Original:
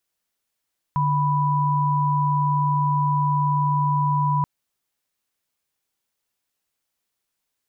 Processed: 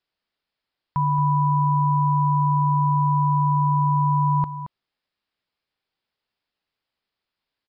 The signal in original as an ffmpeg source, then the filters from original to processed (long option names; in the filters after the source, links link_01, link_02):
-f lavfi -i "aevalsrc='0.0944*(sin(2*PI*146.83*t)+sin(2*PI*987.77*t))':duration=3.48:sample_rate=44100"
-filter_complex "[0:a]asplit=2[link_01][link_02];[link_02]aecho=0:1:224:0.282[link_03];[link_01][link_03]amix=inputs=2:normalize=0,aresample=11025,aresample=44100"